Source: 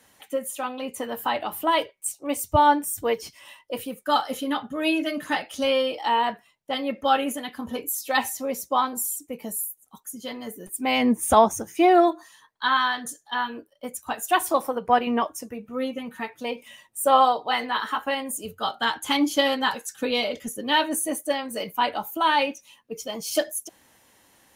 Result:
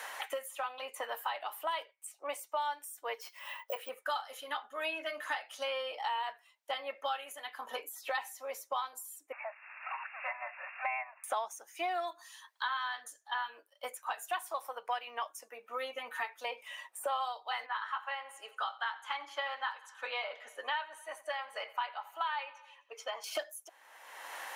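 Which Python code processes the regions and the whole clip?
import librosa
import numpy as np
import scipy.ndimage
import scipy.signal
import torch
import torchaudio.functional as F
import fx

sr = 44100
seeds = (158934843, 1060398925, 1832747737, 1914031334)

y = fx.chain(x, sr, fx.highpass(hz=260.0, slope=12),
    fx.resample_bad(factor=2, down='filtered', up='zero_stuff'), at=(3.21, 3.89))
y = fx.chain(y, sr, fx.crossing_spikes(level_db=-26.5),
    fx.brickwall_bandpass(low_hz=550.0, high_hz=2800.0), at=(9.32, 11.24))
y = fx.chain(y, sr, fx.bandpass_q(hz=1300.0, q=0.98),
    fx.echo_feedback(ms=86, feedback_pct=52, wet_db=-20), at=(17.66, 23.24))
y = scipy.signal.sosfilt(scipy.signal.bessel(4, 980.0, 'highpass', norm='mag', fs=sr, output='sos'), y)
y = fx.high_shelf(y, sr, hz=2700.0, db=-8.5)
y = fx.band_squash(y, sr, depth_pct=100)
y = y * librosa.db_to_amplitude(-6.5)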